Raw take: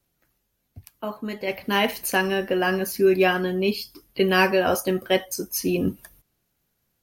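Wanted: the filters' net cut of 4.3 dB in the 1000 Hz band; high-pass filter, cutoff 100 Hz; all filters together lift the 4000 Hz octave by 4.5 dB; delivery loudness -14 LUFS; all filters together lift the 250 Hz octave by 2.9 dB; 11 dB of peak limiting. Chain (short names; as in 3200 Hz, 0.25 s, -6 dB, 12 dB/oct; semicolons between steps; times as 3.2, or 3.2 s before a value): HPF 100 Hz; bell 250 Hz +5.5 dB; bell 1000 Hz -7 dB; bell 4000 Hz +7.5 dB; gain +13 dB; limiter -4 dBFS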